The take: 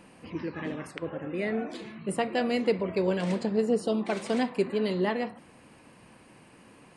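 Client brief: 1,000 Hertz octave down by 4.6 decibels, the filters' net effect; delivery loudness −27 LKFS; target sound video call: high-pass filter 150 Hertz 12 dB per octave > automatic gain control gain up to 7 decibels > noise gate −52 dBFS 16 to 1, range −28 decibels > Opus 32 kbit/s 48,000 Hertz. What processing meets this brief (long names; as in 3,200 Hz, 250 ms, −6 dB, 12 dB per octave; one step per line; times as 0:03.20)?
high-pass filter 150 Hz 12 dB per octave
parametric band 1,000 Hz −7 dB
automatic gain control gain up to 7 dB
noise gate −52 dBFS 16 to 1, range −28 dB
level +4.5 dB
Opus 32 kbit/s 48,000 Hz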